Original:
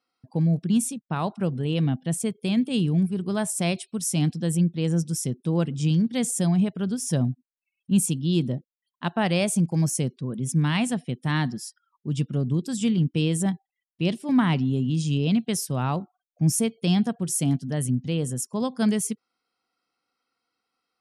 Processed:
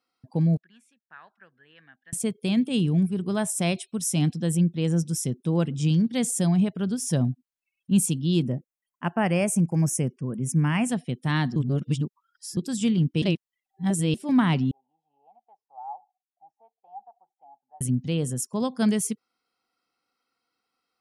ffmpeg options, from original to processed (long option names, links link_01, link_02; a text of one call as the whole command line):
ffmpeg -i in.wav -filter_complex "[0:a]asettb=1/sr,asplit=3[link_01][link_02][link_03];[link_01]atrim=end=0.574[link_04];[link_02]atrim=start=0.57:end=2.13,asetpts=PTS-STARTPTS,afade=type=in:duration=0.004:curve=qsin,afade=type=out:start_time=1.556:duration=0.004:curve=qsin,bandpass=frequency=1700:width_type=q:width=9.8[link_05];[link_03]atrim=start=2.126[link_06];[link_04][link_05]acrossfade=duration=0.004:curve1=hsin:curve2=qsin[link_07];[link_07][link_06]acrossfade=duration=0.004:curve1=qsin:curve2=hsin,asettb=1/sr,asplit=3[link_08][link_09][link_10];[link_08]atrim=end=2.644[link_11];[link_09]atrim=start=2.64:end=5.82,asetpts=PTS-STARTPTS,afade=type=in:duration=0.004:curve=qsin,afade=type=out:start_time=3.176:duration=0.004:curve=qsin,bandreject=frequency=4500:width=12[link_12];[link_10]atrim=start=5.816[link_13];[link_11][link_12]acrossfade=duration=0.004:curve1=hsin:curve2=qsin[link_14];[link_14][link_13]acrossfade=duration=0.004:curve1=qsin:curve2=hsin,asettb=1/sr,asplit=3[link_15][link_16][link_17];[link_15]atrim=end=8.424[link_18];[link_16]atrim=start=8.42:end=10.89,asetpts=PTS-STARTPTS,afade=type=in:duration=0.004:curve=qsin,afade=type=out:start_time=2.466:duration=0.004:curve=qsin,asuperstop=centerf=3900:order=4:qfactor=1.4[link_19];[link_17]atrim=start=10.886[link_20];[link_18][link_19]acrossfade=duration=0.004:curve1=hsin:curve2=qsin[link_21];[link_21][link_20]acrossfade=duration=0.004:curve1=qsin:curve2=hsin,asettb=1/sr,asplit=3[link_22][link_23][link_24];[link_22]atrim=end=14.714[link_25];[link_23]atrim=start=14.71:end=17.81,asetpts=PTS-STARTPTS,afade=type=in:duration=0.004:curve=qsin,afade=type=out:start_time=3.096:duration=0.004:curve=qsin,asuperpass=centerf=810:order=4:qfactor=7.6[link_26];[link_24]atrim=start=17.806[link_27];[link_25][link_26]acrossfade=duration=0.004:curve1=hsin:curve2=qsin[link_28];[link_28][link_27]acrossfade=duration=0.004:curve1=qsin:curve2=hsin,asplit=5[link_29][link_30][link_31][link_32][link_33];[link_29]atrim=end=11.562[link_34];[link_30]atrim=start=11.558:end=12.572,asetpts=PTS-STARTPTS,areverse[link_35];[link_31]atrim=start=12.568:end=13.222[link_36];[link_32]atrim=start=13.218:end=14.142,asetpts=PTS-STARTPTS,areverse[link_37];[link_33]atrim=start=14.138[link_38];[link_34][link_35]acrossfade=duration=0.004:curve1=hsin:curve2=hsin[link_39];[link_39][link_36]acrossfade=duration=0.004:curve1=hsin:curve2=hsin[link_40];[link_40][link_37]acrossfade=duration=0.004:curve1=hsin:curve2=hsin[link_41];[link_41][link_38]acrossfade=duration=0.004:curve1=hsin:curve2=hsin" out.wav